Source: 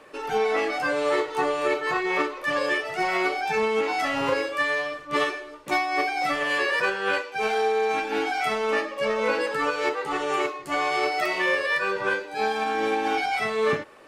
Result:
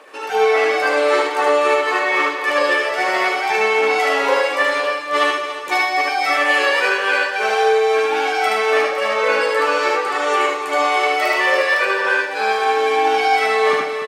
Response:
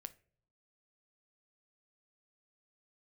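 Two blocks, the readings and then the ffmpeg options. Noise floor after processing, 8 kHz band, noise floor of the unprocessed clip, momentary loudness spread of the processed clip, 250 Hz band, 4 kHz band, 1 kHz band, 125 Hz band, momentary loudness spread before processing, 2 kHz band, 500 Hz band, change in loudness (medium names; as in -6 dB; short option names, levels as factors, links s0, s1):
-25 dBFS, +9.0 dB, -41 dBFS, 3 LU, +1.0 dB, +8.5 dB, +8.5 dB, no reading, 3 LU, +8.5 dB, +8.0 dB, +8.0 dB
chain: -filter_complex "[0:a]highpass=440,aphaser=in_gain=1:out_gain=1:delay=2.5:decay=0.24:speed=1.3:type=triangular,aecho=1:1:120|286|509:0.266|0.316|0.224,asplit=2[s0][s1];[1:a]atrim=start_sample=2205,adelay=75[s2];[s1][s2]afir=irnorm=-1:irlink=0,volume=1.5[s3];[s0][s3]amix=inputs=2:normalize=0,volume=1.88"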